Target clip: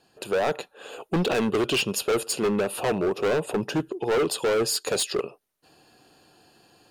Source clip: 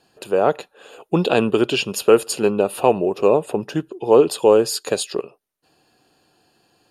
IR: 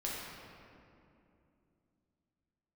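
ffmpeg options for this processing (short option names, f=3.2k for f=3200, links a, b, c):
-af "dynaudnorm=f=150:g=3:m=6dB,asoftclip=type=hard:threshold=-17.5dB,volume=-2.5dB"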